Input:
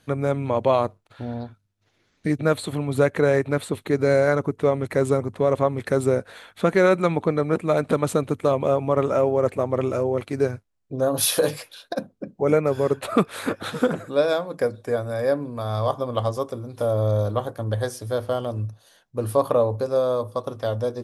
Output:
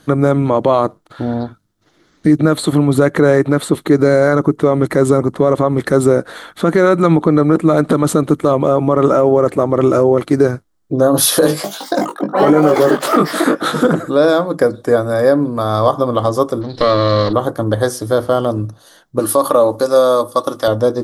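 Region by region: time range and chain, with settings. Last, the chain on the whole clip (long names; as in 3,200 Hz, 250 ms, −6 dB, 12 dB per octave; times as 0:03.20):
0:11.47–0:13.85: high-pass filter 190 Hz + delay with pitch and tempo change per echo 167 ms, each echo +5 semitones, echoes 3, each echo −6 dB + double-tracking delay 20 ms −4 dB
0:16.61–0:17.33: lower of the sound and its delayed copy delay 0.38 ms + low-pass with resonance 4,100 Hz, resonance Q 7.9
0:19.19–0:20.68: spectral tilt +2.5 dB per octave + comb filter 3.5 ms, depth 32%
whole clip: thirty-one-band graphic EQ 100 Hz −9 dB, 160 Hz +4 dB, 315 Hz +9 dB, 1,250 Hz +5 dB, 2,500 Hz −9 dB; boost into a limiter +12 dB; level −1 dB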